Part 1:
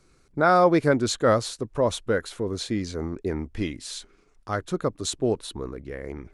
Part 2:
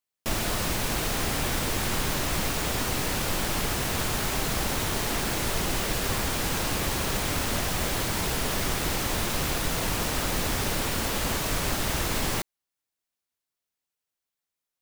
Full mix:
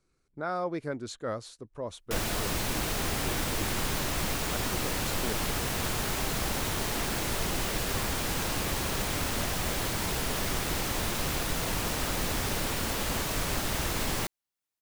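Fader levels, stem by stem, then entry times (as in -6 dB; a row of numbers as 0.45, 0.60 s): -14.0, -3.0 dB; 0.00, 1.85 s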